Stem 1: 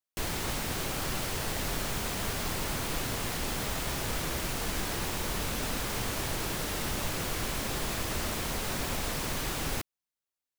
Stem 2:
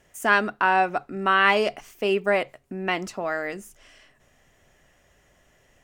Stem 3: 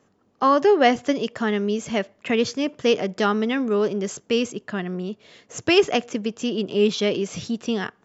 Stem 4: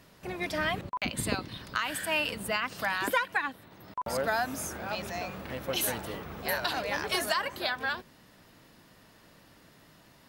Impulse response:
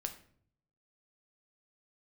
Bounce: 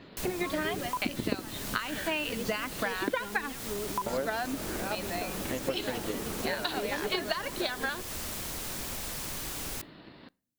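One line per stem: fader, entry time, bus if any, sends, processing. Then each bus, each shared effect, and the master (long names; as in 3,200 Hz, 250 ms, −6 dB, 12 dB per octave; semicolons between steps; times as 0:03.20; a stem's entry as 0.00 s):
−7.0 dB, 0.00 s, send −23 dB, no processing
muted
−11.5 dB, 0.00 s, no send, barber-pole flanger 2.4 ms −0.29 Hz
+2.0 dB, 0.00 s, send −16.5 dB, elliptic low-pass filter 4,300 Hz; parametric band 320 Hz +9.5 dB 1.4 octaves; transient designer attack +7 dB, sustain +1 dB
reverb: on, RT60 0.55 s, pre-delay 7 ms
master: high-shelf EQ 4,300 Hz +9 dB; downward compressor 2.5 to 1, threshold −33 dBFS, peak gain reduction 15 dB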